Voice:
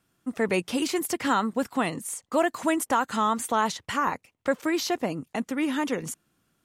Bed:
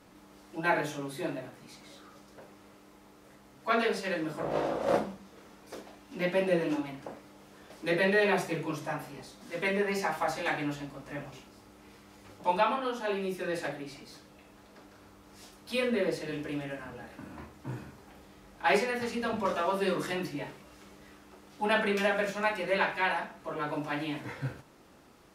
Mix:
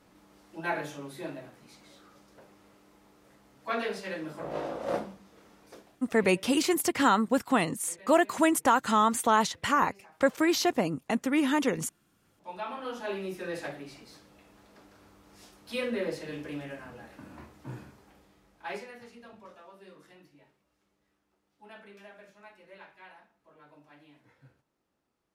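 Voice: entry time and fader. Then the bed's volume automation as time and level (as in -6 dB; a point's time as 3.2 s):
5.75 s, +1.0 dB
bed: 5.65 s -4 dB
6.45 s -25.5 dB
12.1 s -25.5 dB
12.93 s -2.5 dB
17.79 s -2.5 dB
19.68 s -23 dB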